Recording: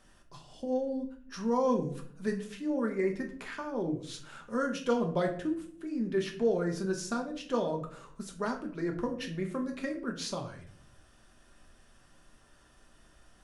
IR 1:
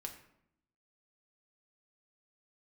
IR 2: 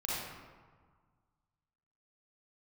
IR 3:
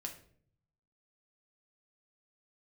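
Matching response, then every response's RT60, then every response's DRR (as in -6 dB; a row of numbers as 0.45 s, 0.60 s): 3; 0.75 s, 1.6 s, 0.55 s; 2.0 dB, -7.0 dB, 2.0 dB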